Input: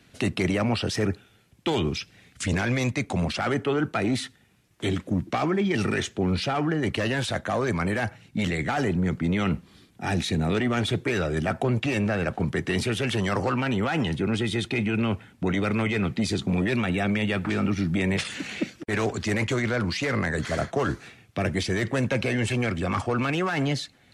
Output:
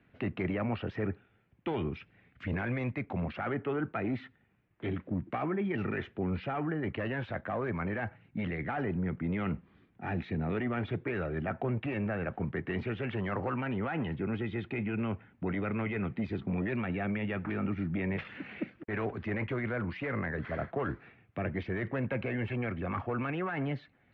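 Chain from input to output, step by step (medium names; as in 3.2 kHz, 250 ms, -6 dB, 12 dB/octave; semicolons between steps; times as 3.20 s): low-pass 2.4 kHz 24 dB/octave; trim -8 dB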